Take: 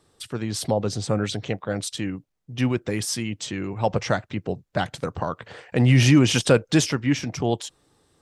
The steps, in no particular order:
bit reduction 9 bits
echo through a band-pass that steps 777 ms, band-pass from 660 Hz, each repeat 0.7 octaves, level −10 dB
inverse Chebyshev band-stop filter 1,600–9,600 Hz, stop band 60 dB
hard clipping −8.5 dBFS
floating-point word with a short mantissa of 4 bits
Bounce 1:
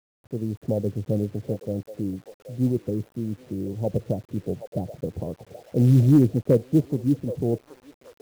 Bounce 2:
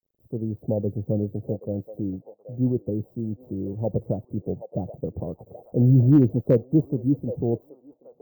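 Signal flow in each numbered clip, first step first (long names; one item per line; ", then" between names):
inverse Chebyshev band-stop filter, then hard clipping, then echo through a band-pass that steps, then bit reduction, then floating-point word with a short mantissa
bit reduction, then echo through a band-pass that steps, then floating-point word with a short mantissa, then inverse Chebyshev band-stop filter, then hard clipping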